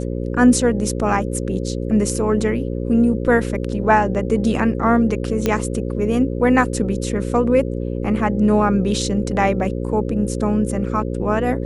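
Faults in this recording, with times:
mains buzz 60 Hz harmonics 9 −24 dBFS
0:05.46: click −5 dBFS

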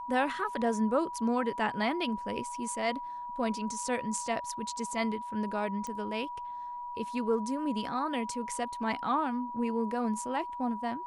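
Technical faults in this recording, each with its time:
whistle 970 Hz −37 dBFS
0:05.87: click −25 dBFS

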